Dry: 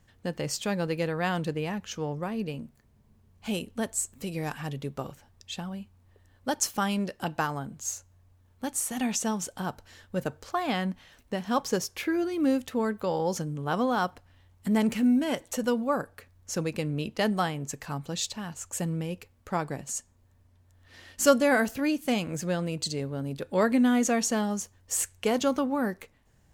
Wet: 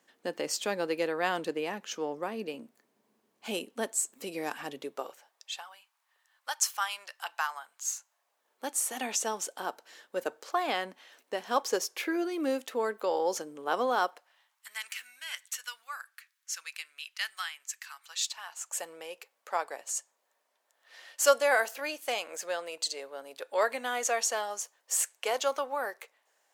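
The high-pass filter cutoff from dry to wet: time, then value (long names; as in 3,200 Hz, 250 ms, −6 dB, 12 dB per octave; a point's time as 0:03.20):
high-pass filter 24 dB per octave
0:04.74 280 Hz
0:05.77 930 Hz
0:07.94 930 Hz
0:08.67 350 Hz
0:14.03 350 Hz
0:14.77 1,500 Hz
0:17.90 1,500 Hz
0:18.87 530 Hz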